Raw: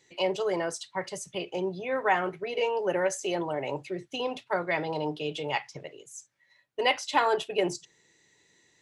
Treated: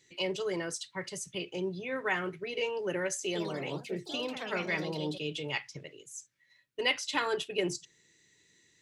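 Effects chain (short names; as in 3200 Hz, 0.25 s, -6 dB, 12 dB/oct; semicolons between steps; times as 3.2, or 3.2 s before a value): bell 760 Hz -13 dB 1.2 oct; 3.26–5.43 echoes that change speed 93 ms, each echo +3 st, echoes 3, each echo -6 dB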